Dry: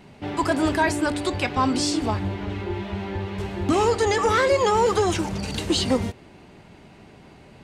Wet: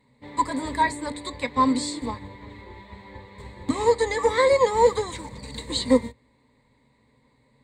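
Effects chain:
EQ curve with evenly spaced ripples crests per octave 1, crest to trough 16 dB
expander for the loud parts 1.5 to 1, over −40 dBFS
level −2.5 dB

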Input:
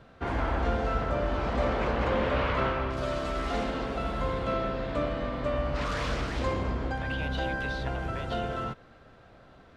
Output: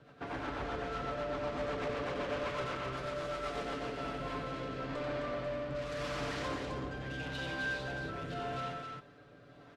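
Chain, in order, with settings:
high-pass filter 44 Hz
low-shelf EQ 88 Hz −11 dB
comb filter 6.9 ms, depth 61%
in parallel at −2.5 dB: brickwall limiter −26 dBFS, peak gain reduction 10 dB
on the sum: soft clipping −27 dBFS, distortion −11 dB
rotating-speaker cabinet horn 8 Hz, later 0.85 Hz, at 0:03.61
on a send: loudspeakers that aren't time-aligned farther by 31 metres −5 dB, 90 metres −4 dB
on the sum: level −7 dB

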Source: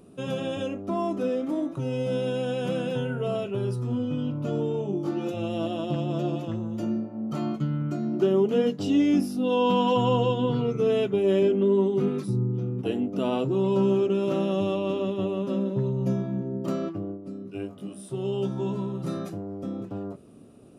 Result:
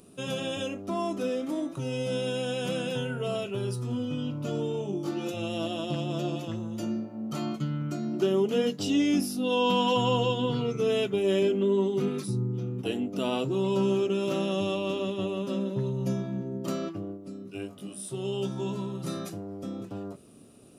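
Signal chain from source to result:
high-shelf EQ 2,400 Hz +12 dB
level −3.5 dB

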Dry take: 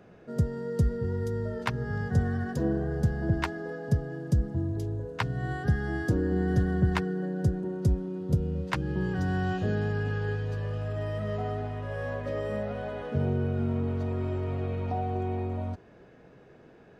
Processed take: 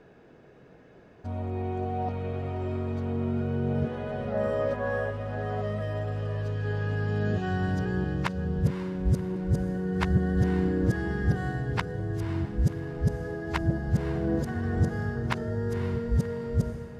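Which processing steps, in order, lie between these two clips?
played backwards from end to start
gain on a spectral selection 0:04.32–0:05.10, 470–1,700 Hz +6 dB
feedback delay with all-pass diffusion 534 ms, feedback 47%, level −10 dB

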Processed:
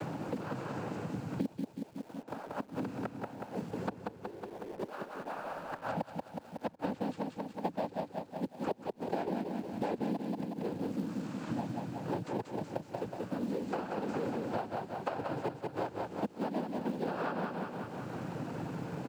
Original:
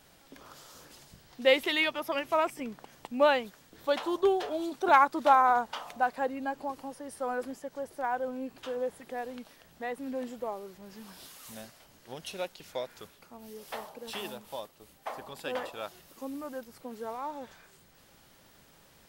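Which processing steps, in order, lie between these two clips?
samples in bit-reversed order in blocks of 16 samples
low-pass filter 3,000 Hz 6 dB per octave
spectral tilt −3 dB per octave
slap from a distant wall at 28 metres, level −16 dB
gate with flip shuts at −25 dBFS, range −41 dB
cochlear-implant simulation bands 8
repeating echo 184 ms, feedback 42%, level −5 dB
in parallel at −7 dB: log-companded quantiser 6 bits
on the sum: multiband upward and downward compressor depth 100%

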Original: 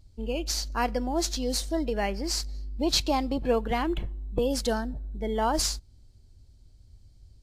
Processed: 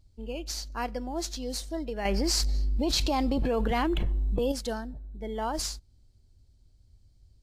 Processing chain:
0:02.05–0:04.52: envelope flattener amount 100%
level −5.5 dB

